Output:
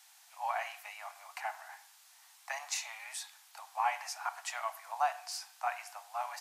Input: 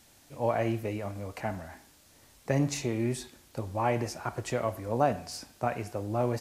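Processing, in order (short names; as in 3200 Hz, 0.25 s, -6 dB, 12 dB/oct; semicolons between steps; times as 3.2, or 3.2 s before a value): steep high-pass 730 Hz 72 dB/oct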